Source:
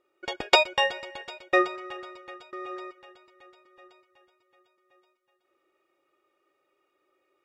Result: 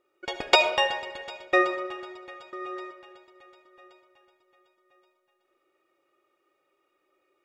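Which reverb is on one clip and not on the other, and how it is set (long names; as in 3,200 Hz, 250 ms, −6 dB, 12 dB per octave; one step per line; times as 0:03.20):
comb and all-pass reverb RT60 1.2 s, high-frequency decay 0.5×, pre-delay 30 ms, DRR 8.5 dB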